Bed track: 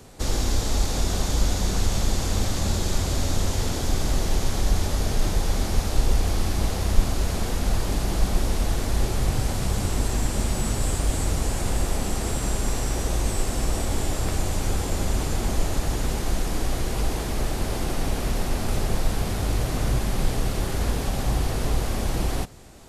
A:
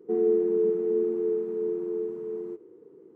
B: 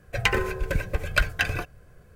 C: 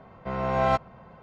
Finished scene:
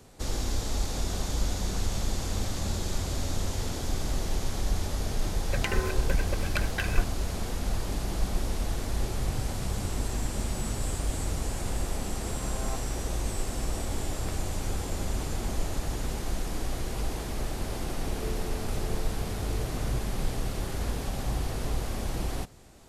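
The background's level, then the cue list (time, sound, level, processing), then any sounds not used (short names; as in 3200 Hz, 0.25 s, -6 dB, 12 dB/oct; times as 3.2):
bed track -6.5 dB
5.39 add B -2.5 dB + compressor, threshold -23 dBFS
12 add C -18 dB + steep low-pass 1800 Hz
17.94 add A -15.5 dB + random-step tremolo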